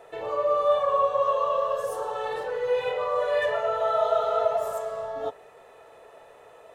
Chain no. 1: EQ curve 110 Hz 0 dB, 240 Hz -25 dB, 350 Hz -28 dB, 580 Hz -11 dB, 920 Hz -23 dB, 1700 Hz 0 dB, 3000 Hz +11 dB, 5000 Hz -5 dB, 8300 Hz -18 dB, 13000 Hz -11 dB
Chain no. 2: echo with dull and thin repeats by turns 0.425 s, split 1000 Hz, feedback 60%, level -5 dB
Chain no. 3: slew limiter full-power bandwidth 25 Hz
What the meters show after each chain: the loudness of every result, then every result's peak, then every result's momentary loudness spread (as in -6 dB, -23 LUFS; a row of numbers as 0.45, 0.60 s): -34.5, -25.0, -31.0 LUFS; -17.0, -11.0, -18.0 dBFS; 24, 16, 21 LU